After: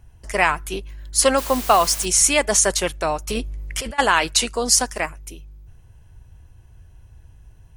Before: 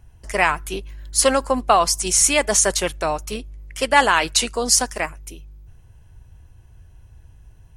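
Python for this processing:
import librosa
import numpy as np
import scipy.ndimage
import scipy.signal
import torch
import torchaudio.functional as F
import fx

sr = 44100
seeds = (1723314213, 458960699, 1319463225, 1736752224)

y = fx.dmg_noise_colour(x, sr, seeds[0], colour='white', level_db=-32.0, at=(1.37, 2.04), fade=0.02)
y = fx.over_compress(y, sr, threshold_db=-28.0, ratio=-1.0, at=(3.28, 3.98), fade=0.02)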